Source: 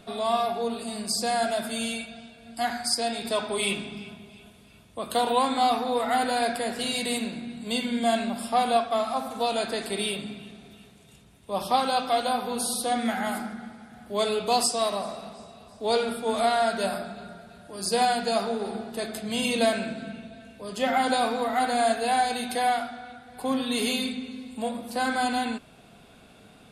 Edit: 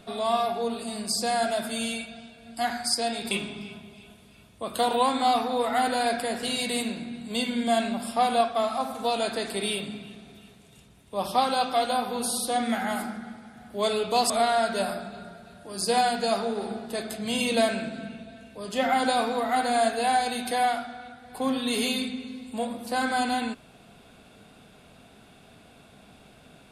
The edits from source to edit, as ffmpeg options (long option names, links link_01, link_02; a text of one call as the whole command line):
ffmpeg -i in.wav -filter_complex "[0:a]asplit=3[link_01][link_02][link_03];[link_01]atrim=end=3.312[link_04];[link_02]atrim=start=3.668:end=14.662[link_05];[link_03]atrim=start=16.338[link_06];[link_04][link_05]acrossfade=duration=0.004:curve1=hsin:curve2=hsin[link_07];[link_07][link_06]acrossfade=duration=0.004:curve1=hsin:curve2=hsin" out.wav